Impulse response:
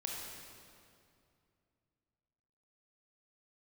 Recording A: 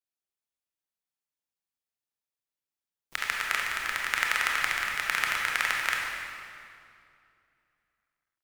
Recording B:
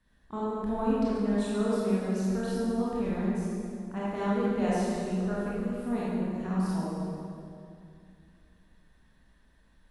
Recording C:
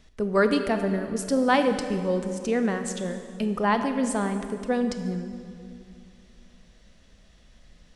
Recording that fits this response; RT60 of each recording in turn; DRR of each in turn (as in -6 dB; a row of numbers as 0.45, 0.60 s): A; 2.5, 2.5, 2.5 s; -2.0, -8.5, 7.5 dB